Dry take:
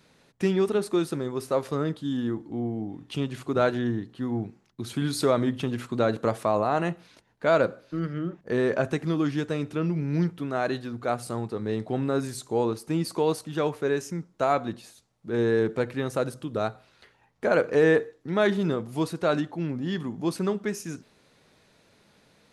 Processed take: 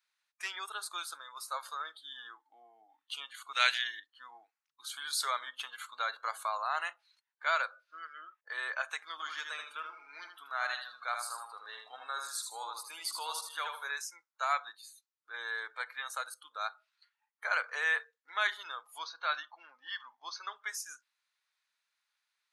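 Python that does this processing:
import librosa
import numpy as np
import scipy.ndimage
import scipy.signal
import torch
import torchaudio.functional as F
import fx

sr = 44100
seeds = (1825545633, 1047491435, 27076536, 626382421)

y = fx.high_shelf_res(x, sr, hz=1700.0, db=10.5, q=1.5, at=(3.53, 4.0))
y = fx.echo_feedback(y, sr, ms=78, feedback_pct=37, wet_db=-5.0, at=(9.12, 13.91))
y = fx.cheby1_lowpass(y, sr, hz=6200.0, order=6, at=(18.98, 20.56))
y = scipy.signal.sosfilt(scipy.signal.butter(4, 1100.0, 'highpass', fs=sr, output='sos'), y)
y = fx.noise_reduce_blind(y, sr, reduce_db=19)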